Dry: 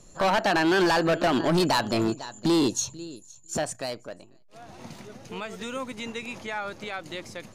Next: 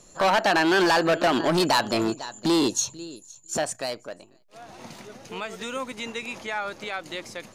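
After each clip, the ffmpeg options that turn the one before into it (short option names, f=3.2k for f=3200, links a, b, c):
-af "lowshelf=f=200:g=-9.5,volume=3dB"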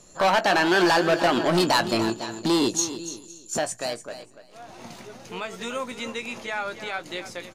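-filter_complex "[0:a]asplit=2[a][b];[b]adelay=17,volume=-10.5dB[c];[a][c]amix=inputs=2:normalize=0,aecho=1:1:291|582:0.251|0.0427"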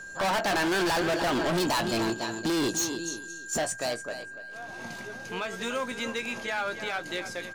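-af "asoftclip=type=hard:threshold=-24.5dB,aeval=exprs='val(0)+0.01*sin(2*PI*1600*n/s)':c=same"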